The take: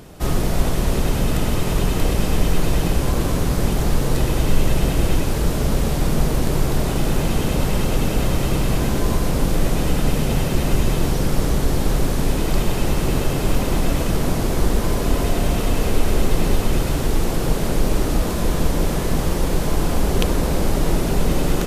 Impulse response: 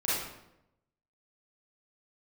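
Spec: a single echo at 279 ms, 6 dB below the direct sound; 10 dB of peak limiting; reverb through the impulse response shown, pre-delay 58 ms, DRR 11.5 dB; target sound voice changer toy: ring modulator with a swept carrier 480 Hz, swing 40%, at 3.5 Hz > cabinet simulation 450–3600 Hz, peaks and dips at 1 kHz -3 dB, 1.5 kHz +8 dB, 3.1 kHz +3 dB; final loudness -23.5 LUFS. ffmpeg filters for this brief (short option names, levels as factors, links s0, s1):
-filter_complex "[0:a]alimiter=limit=0.224:level=0:latency=1,aecho=1:1:279:0.501,asplit=2[s0][s1];[1:a]atrim=start_sample=2205,adelay=58[s2];[s1][s2]afir=irnorm=-1:irlink=0,volume=0.0944[s3];[s0][s3]amix=inputs=2:normalize=0,aeval=exprs='val(0)*sin(2*PI*480*n/s+480*0.4/3.5*sin(2*PI*3.5*n/s))':c=same,highpass=450,equalizer=f=1000:t=q:w=4:g=-3,equalizer=f=1500:t=q:w=4:g=8,equalizer=f=3100:t=q:w=4:g=3,lowpass=f=3600:w=0.5412,lowpass=f=3600:w=1.3066,volume=1.26"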